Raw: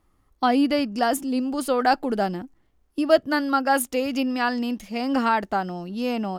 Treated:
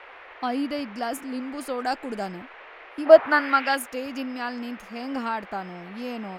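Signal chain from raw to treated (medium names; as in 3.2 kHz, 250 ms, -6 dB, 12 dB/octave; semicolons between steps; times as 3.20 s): 1.78–2.32 s: peaking EQ 7.5 kHz +11 dB 0.69 oct; band noise 400–2400 Hz -38 dBFS; 3.05–3.74 s: peaking EQ 640 Hz -> 3.3 kHz +15 dB 2 oct; trim -7.5 dB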